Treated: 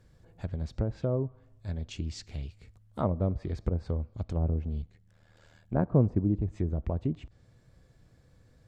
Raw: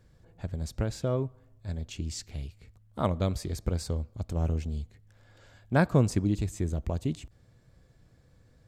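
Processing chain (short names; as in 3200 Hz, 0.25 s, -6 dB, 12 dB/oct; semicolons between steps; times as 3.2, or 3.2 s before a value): treble ducked by the level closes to 760 Hz, closed at -24.5 dBFS; 4.82–5.88 AM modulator 78 Hz, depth 65%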